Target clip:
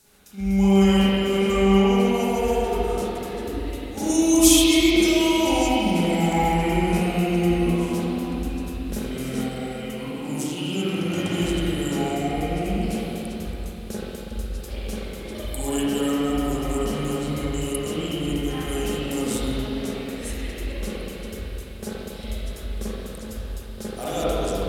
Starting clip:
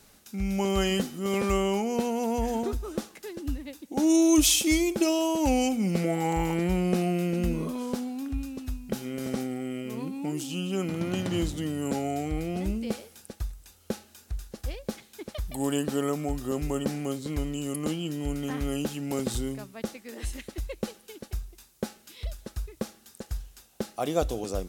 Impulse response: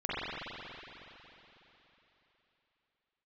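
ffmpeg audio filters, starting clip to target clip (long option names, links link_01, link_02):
-filter_complex "[0:a]asetnsamples=nb_out_samples=441:pad=0,asendcmd='2.14 equalizer g 14',equalizer=frequency=10000:width=0.4:gain=8[link_01];[1:a]atrim=start_sample=2205[link_02];[link_01][link_02]afir=irnorm=-1:irlink=0,volume=-5dB"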